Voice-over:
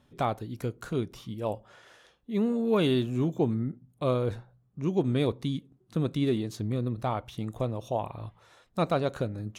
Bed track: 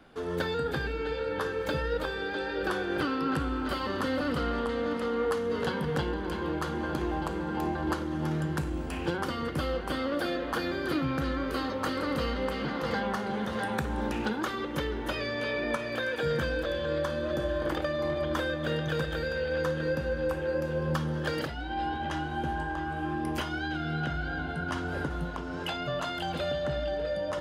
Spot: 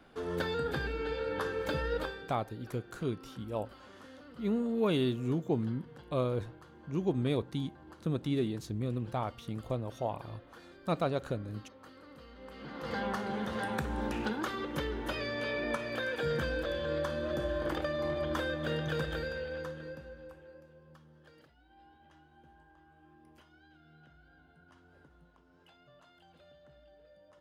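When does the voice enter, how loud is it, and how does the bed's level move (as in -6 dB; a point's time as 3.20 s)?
2.10 s, -4.5 dB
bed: 2.03 s -3 dB
2.40 s -23 dB
12.28 s -23 dB
13.03 s -3.5 dB
19.15 s -3.5 dB
20.84 s -28.5 dB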